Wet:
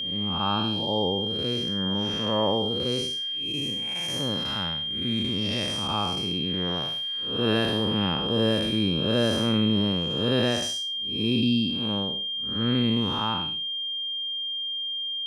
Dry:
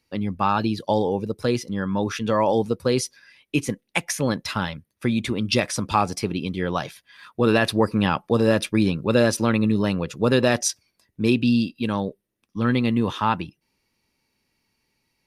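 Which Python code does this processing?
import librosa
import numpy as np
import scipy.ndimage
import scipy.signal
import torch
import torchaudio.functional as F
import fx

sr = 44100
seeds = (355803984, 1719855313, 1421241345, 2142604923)

y = fx.spec_blur(x, sr, span_ms=221.0)
y = y + 10.0 ** (-26.0 / 20.0) * np.sin(2.0 * np.pi * 3200.0 * np.arange(len(y)) / sr)
y = F.gain(torch.from_numpy(y), -2.0).numpy()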